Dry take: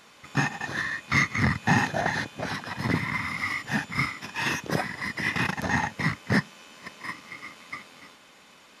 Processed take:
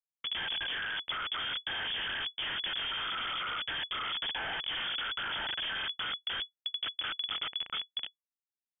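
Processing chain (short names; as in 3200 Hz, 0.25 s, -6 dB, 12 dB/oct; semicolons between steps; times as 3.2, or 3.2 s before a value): HPF 250 Hz 12 dB/oct; band shelf 820 Hz -15 dB 1.1 oct; in parallel at +2.5 dB: compressor 16:1, threshold -40 dBFS, peak gain reduction 21.5 dB; on the sum: Schmitt trigger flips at -32 dBFS; inverted band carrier 3400 Hz; gain -5 dB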